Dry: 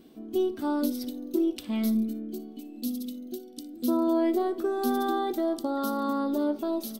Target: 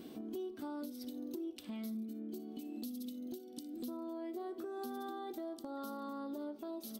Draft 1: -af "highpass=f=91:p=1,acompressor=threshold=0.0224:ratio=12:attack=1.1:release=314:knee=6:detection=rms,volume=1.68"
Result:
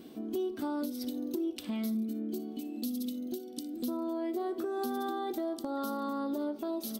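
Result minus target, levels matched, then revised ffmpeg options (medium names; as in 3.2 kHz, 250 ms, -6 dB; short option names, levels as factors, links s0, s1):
compression: peak gain reduction -8.5 dB
-af "highpass=f=91:p=1,acompressor=threshold=0.0075:ratio=12:attack=1.1:release=314:knee=6:detection=rms,volume=1.68"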